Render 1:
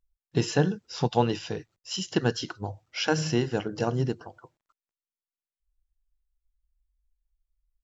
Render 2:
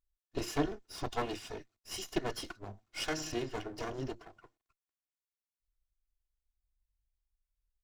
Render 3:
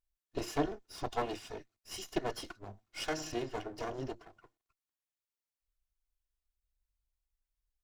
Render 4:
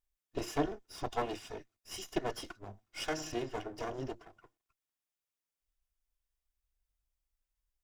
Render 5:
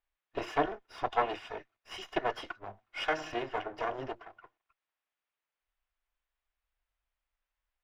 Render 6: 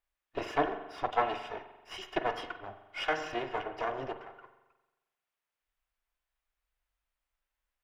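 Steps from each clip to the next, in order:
lower of the sound and its delayed copy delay 2.8 ms; level −6.5 dB
dynamic equaliser 680 Hz, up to +5 dB, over −46 dBFS, Q 1; level −2.5 dB
notch filter 4,200 Hz, Q 11
three-way crossover with the lows and the highs turned down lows −13 dB, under 550 Hz, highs −23 dB, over 3,200 Hz; level +8.5 dB
spring reverb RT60 1.1 s, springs 43 ms, chirp 45 ms, DRR 9 dB

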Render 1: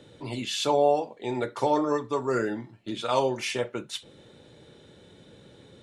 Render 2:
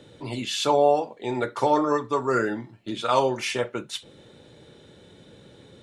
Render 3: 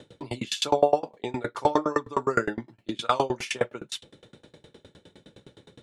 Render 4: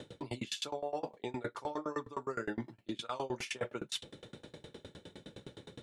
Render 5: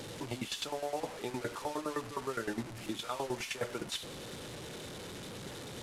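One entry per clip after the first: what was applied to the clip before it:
dynamic equaliser 1,300 Hz, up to +5 dB, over −41 dBFS, Q 1.7; level +2 dB
tremolo with a ramp in dB decaying 9.7 Hz, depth 28 dB; level +5.5 dB
brickwall limiter −13.5 dBFS, peak gain reduction 8.5 dB; reversed playback; downward compressor 6 to 1, threshold −36 dBFS, peak gain reduction 15.5 dB; reversed playback; level +1 dB
linear delta modulator 64 kbit/s, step −40 dBFS; level +1 dB

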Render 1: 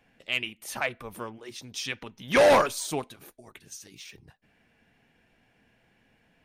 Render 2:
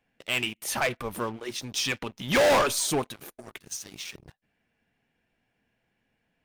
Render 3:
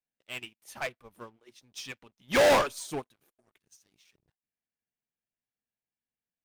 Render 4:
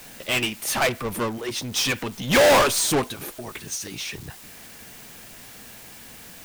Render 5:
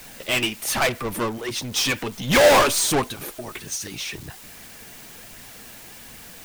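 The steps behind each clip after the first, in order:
leveller curve on the samples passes 3; level −4 dB
expander for the loud parts 2.5 to 1, over −36 dBFS
power curve on the samples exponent 0.35; level +4.5 dB
flanger 1.3 Hz, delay 0.4 ms, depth 3.2 ms, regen +72%; level +5.5 dB

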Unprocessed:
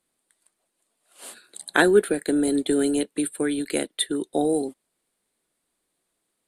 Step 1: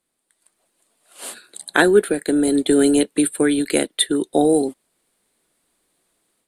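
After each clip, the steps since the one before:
automatic gain control gain up to 8.5 dB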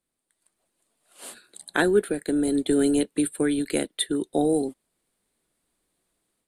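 low-shelf EQ 180 Hz +8.5 dB
level −8 dB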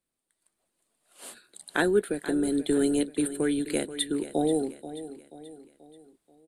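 repeating echo 483 ms, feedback 45%, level −13.5 dB
level −3 dB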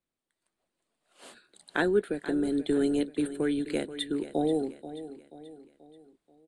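high-frequency loss of the air 78 metres
level −1.5 dB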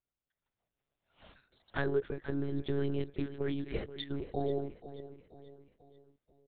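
one-pitch LPC vocoder at 8 kHz 140 Hz
level −6 dB

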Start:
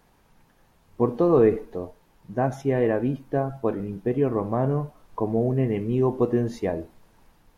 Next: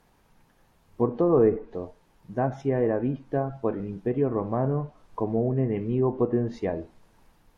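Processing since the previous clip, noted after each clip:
treble cut that deepens with the level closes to 1,500 Hz, closed at −17.5 dBFS
level −2 dB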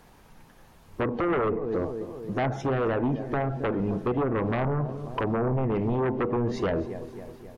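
repeating echo 268 ms, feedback 56%, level −18.5 dB
downward compressor 2.5 to 1, threshold −27 dBFS, peak gain reduction 8.5 dB
sine wavefolder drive 10 dB, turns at −16 dBFS
level −5.5 dB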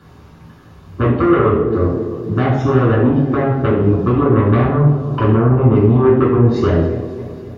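convolution reverb RT60 0.70 s, pre-delay 3 ms, DRR −3.5 dB
level −5.5 dB

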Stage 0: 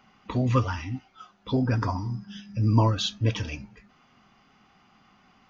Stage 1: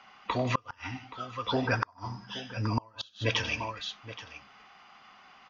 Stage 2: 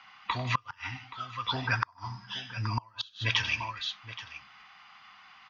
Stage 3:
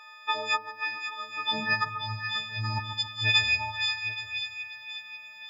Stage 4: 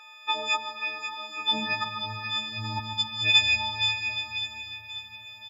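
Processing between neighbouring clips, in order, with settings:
three-way crossover with the lows and the highs turned down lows −16 dB, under 540 Hz, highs −21 dB, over 6,400 Hz; multi-tap delay 96/152/825 ms −14.5/−18/−15 dB; gate with flip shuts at −21 dBFS, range −33 dB; level +7 dB
octave-band graphic EQ 125/250/500/1,000/2,000/4,000 Hz +5/−3/−11/+6/+6/+7 dB; level −4.5 dB
every partial snapped to a pitch grid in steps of 6 semitones; echo with a time of its own for lows and highs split 1,400 Hz, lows 139 ms, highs 536 ms, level −8.5 dB; high-pass filter sweep 420 Hz → 70 Hz, 0:01.11–0:02.44; level −3 dB
comb filter 3.7 ms, depth 62%; on a send at −8 dB: convolution reverb RT60 4.7 s, pre-delay 95 ms

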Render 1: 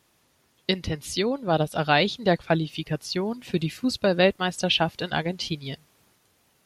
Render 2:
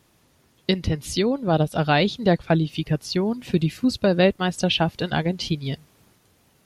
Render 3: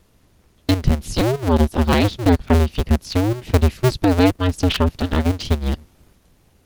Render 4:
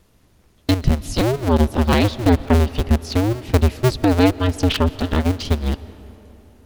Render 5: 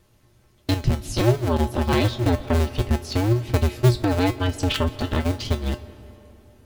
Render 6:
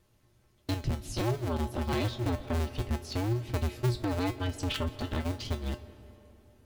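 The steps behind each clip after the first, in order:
low-shelf EQ 390 Hz +7.5 dB; in parallel at −3 dB: downward compressor, threshold −26 dBFS, peak gain reduction 14.5 dB; on the sum: level −2.5 dB
sub-harmonics by changed cycles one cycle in 2, inverted; low-shelf EQ 240 Hz +11.5 dB; level −1 dB
convolution reverb RT60 3.5 s, pre-delay 90 ms, DRR 17.5 dB
in parallel at +2 dB: brickwall limiter −9 dBFS, peak gain reduction 7 dB; on the sum: tuned comb filter 120 Hz, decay 0.22 s, harmonics odd, mix 80%
soft clipping −13.5 dBFS, distortion −15 dB; level −8 dB

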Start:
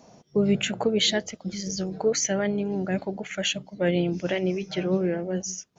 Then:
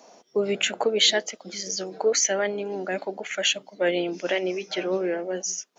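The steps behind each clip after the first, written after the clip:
Bessel high-pass filter 420 Hz, order 4
level +4 dB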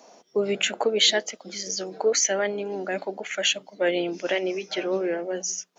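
mains-hum notches 60/120/180 Hz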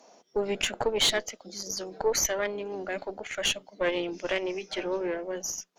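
gain on a spectral selection 0:01.47–0:01.78, 880–3,500 Hz −13 dB
tube saturation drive 15 dB, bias 0.75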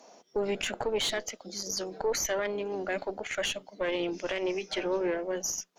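brickwall limiter −21.5 dBFS, peak gain reduction 9.5 dB
level +1.5 dB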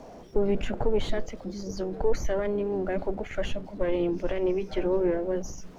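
converter with a step at zero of −44 dBFS
spectral tilt −4.5 dB per octave
level −2 dB

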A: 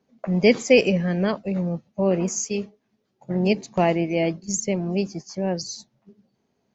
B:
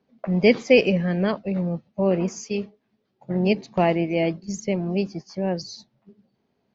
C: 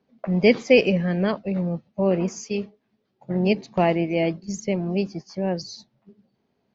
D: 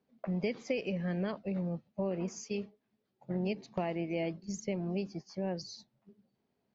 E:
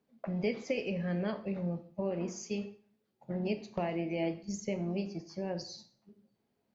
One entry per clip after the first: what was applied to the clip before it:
low-pass filter 4,900 Hz 24 dB per octave
no processing that can be heard
downward compressor 12 to 1, threshold −21 dBFS, peak gain reduction 12 dB; level −8.5 dB
dense smooth reverb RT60 0.52 s, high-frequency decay 0.85×, DRR 7 dB

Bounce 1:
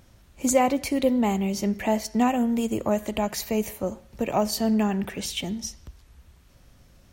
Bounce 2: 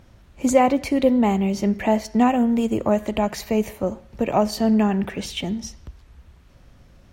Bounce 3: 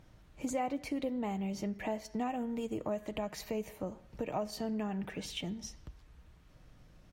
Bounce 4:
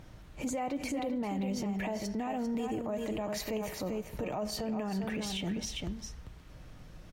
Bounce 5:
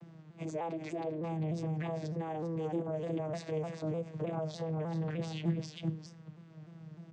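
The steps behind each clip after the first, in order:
high-shelf EQ 5,100 Hz −12 dB; level +4.5 dB
comb filter 6.5 ms, depth 34%; downward compressor 2 to 1, threshold −30 dBFS, peak gain reduction 10.5 dB; level −8.5 dB
on a send: single-tap delay 396 ms −8 dB; on the sum: brickwall limiter −35 dBFS, peak gain reduction 11.5 dB; level +8 dB
channel vocoder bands 16, saw 161 Hz; pitch modulation by a square or saw wave saw down 3.3 Hz, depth 100 cents

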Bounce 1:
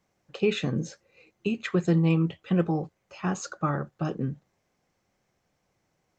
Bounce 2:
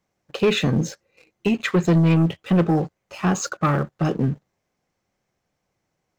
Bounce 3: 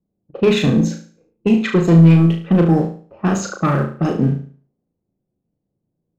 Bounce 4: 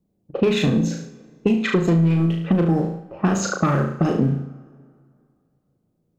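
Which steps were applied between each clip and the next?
leveller curve on the samples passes 2; level +2 dB
low-pass that shuts in the quiet parts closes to 340 Hz, open at −17.5 dBFS; parametric band 250 Hz +5.5 dB 1.7 octaves; on a send: flutter between parallel walls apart 6.2 metres, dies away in 0.43 s
downward compressor, threshold −21 dBFS, peak gain reduction 14.5 dB; convolution reverb RT60 2.3 s, pre-delay 106 ms, DRR 21 dB; level +5 dB

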